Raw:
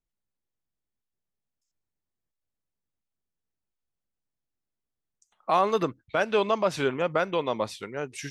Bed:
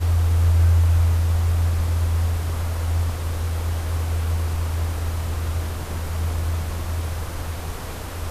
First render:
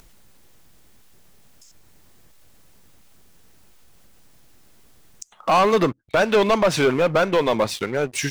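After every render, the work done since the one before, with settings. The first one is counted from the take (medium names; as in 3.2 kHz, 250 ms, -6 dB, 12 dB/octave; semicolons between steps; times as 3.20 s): waveshaping leveller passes 3; upward compressor, threshold -20 dBFS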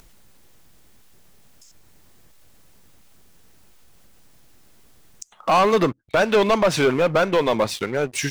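no audible change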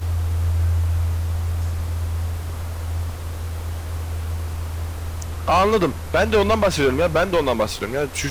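add bed -3.5 dB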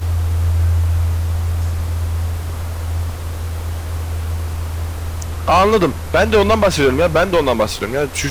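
trim +4.5 dB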